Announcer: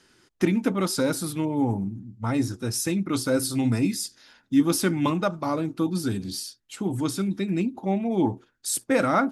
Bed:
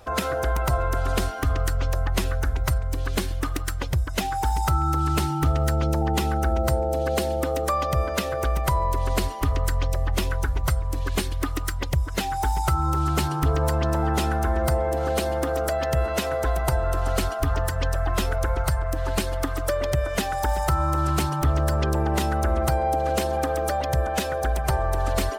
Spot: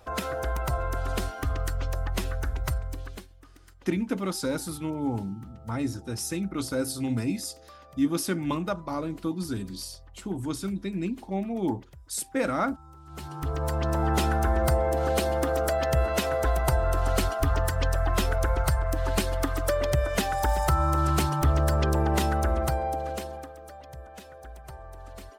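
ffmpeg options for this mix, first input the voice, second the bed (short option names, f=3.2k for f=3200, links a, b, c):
-filter_complex "[0:a]adelay=3450,volume=-5dB[a];[1:a]volume=20dB,afade=t=out:st=2.78:d=0.5:silence=0.0891251,afade=t=in:st=13.06:d=1.12:silence=0.0530884,afade=t=out:st=22.25:d=1.28:silence=0.112202[b];[a][b]amix=inputs=2:normalize=0"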